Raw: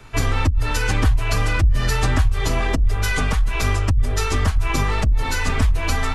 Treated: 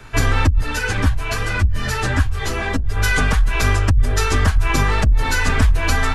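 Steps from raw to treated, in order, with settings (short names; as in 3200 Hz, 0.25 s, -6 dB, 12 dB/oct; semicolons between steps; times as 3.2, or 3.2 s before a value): bell 1600 Hz +6.5 dB 0.23 oct; 0.61–2.97 ensemble effect; gain +3 dB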